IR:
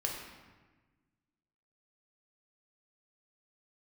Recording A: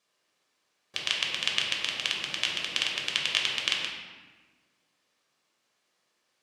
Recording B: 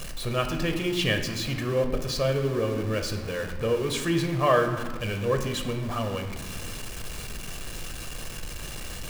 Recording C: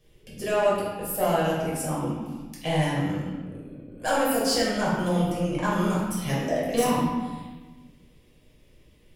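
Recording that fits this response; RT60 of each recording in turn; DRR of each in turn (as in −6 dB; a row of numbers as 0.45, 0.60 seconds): A; 1.3, 1.3, 1.3 seconds; −1.0, 5.0, −7.5 decibels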